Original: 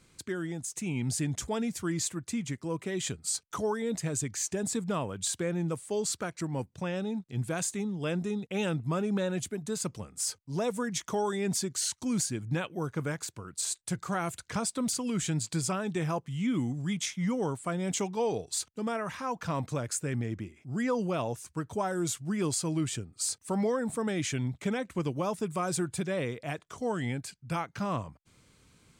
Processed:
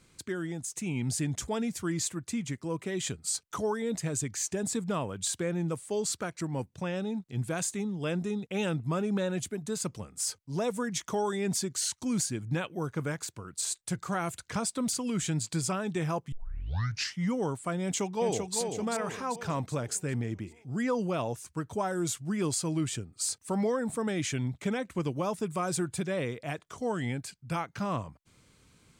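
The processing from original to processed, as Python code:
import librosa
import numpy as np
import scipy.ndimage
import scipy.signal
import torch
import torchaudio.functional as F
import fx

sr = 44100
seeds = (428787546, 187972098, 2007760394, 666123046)

y = fx.echo_throw(x, sr, start_s=17.82, length_s=0.75, ms=390, feedback_pct=50, wet_db=-5.0)
y = fx.edit(y, sr, fx.tape_start(start_s=16.32, length_s=0.9), tone=tone)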